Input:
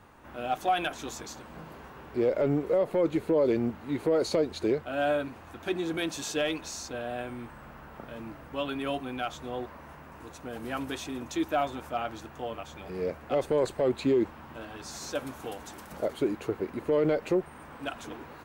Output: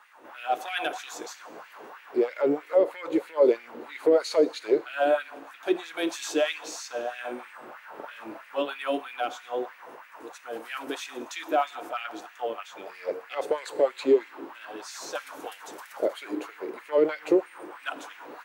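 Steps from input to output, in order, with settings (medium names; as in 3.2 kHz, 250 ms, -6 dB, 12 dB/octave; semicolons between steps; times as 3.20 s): 7.20–8.62 s: doubling 44 ms -2.5 dB; FDN reverb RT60 1.3 s, low-frequency decay 1.55×, high-frequency decay 0.95×, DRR 13.5 dB; LFO high-pass sine 3.1 Hz 350–2200 Hz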